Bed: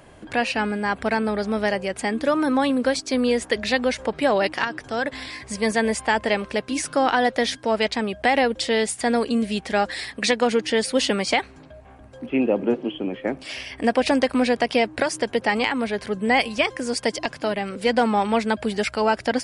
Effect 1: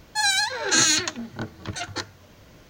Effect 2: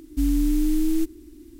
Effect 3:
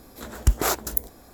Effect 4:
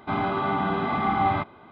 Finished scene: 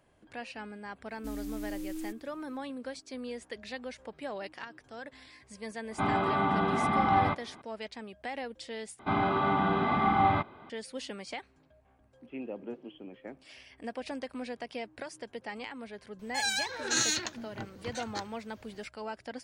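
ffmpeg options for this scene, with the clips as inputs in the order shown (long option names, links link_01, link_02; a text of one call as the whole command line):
ffmpeg -i bed.wav -i cue0.wav -i cue1.wav -i cue2.wav -i cue3.wav -filter_complex "[4:a]asplit=2[link_01][link_02];[0:a]volume=-19dB[link_03];[2:a]lowshelf=frequency=230:gain=-10[link_04];[link_03]asplit=2[link_05][link_06];[link_05]atrim=end=8.994[link_07];[link_02]atrim=end=1.71,asetpts=PTS-STARTPTS,volume=-2dB[link_08];[link_06]atrim=start=10.696[link_09];[link_04]atrim=end=1.59,asetpts=PTS-STARTPTS,volume=-12dB,afade=type=in:duration=0.1,afade=type=out:start_time=1.49:duration=0.1,adelay=1070[link_10];[link_01]atrim=end=1.71,asetpts=PTS-STARTPTS,volume=-2.5dB,afade=type=in:duration=0.004:curve=hsin,afade=type=out:start_time=1.706:duration=0.004:curve=hsin,adelay=5910[link_11];[1:a]atrim=end=2.69,asetpts=PTS-STARTPTS,volume=-9.5dB,afade=type=in:duration=0.004:curve=hsin,afade=type=out:start_time=2.686:duration=0.004:curve=hsin,adelay=16190[link_12];[link_07][link_08]acrossfade=duration=0.004:curve1=hsin:curve2=hsin[link_13];[link_13][link_09]acrossfade=duration=0.004:curve1=hsin:curve2=hsin[link_14];[link_14][link_10][link_11][link_12]amix=inputs=4:normalize=0" out.wav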